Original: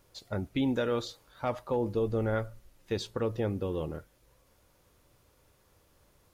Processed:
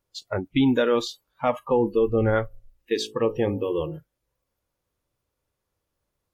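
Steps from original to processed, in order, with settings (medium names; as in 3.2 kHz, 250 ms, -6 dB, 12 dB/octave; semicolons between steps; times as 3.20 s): spectral noise reduction 24 dB; 2.45–3.98 s: de-hum 54.03 Hz, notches 17; trim +9 dB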